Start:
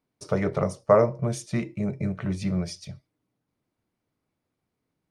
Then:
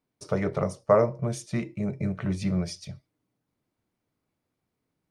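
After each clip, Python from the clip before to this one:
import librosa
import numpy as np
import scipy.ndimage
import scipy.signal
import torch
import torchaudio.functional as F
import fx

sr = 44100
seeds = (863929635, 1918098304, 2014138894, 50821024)

y = fx.rider(x, sr, range_db=10, speed_s=2.0)
y = F.gain(torch.from_numpy(y), -3.0).numpy()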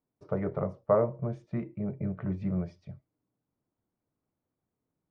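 y = scipy.signal.sosfilt(scipy.signal.butter(2, 1300.0, 'lowpass', fs=sr, output='sos'), x)
y = F.gain(torch.from_numpy(y), -4.0).numpy()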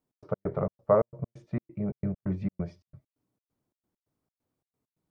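y = fx.step_gate(x, sr, bpm=133, pattern='x.x.xx.x', floor_db=-60.0, edge_ms=4.5)
y = F.gain(torch.from_numpy(y), 2.0).numpy()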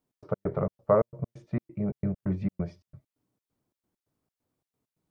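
y = fx.dynamic_eq(x, sr, hz=750.0, q=1.8, threshold_db=-36.0, ratio=4.0, max_db=-3)
y = F.gain(torch.from_numpy(y), 1.5).numpy()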